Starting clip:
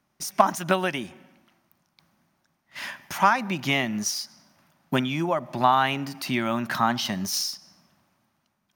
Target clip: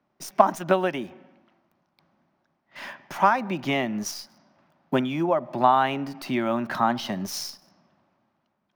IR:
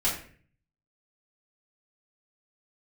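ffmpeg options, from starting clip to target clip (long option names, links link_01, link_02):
-filter_complex "[0:a]equalizer=frequency=480:width_type=o:width=2.6:gain=10,acrossover=split=140|5500[link_01][link_02][link_03];[link_03]acrusher=bits=6:dc=4:mix=0:aa=0.000001[link_04];[link_01][link_02][link_04]amix=inputs=3:normalize=0,volume=-6dB"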